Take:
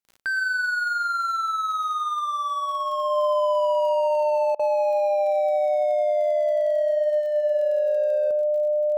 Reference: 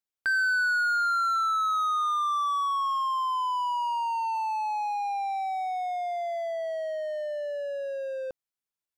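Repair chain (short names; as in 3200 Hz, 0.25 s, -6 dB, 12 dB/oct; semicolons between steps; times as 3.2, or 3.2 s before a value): de-click; notch 600 Hz, Q 30; interpolate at 4.55, 42 ms; inverse comb 0.11 s -11.5 dB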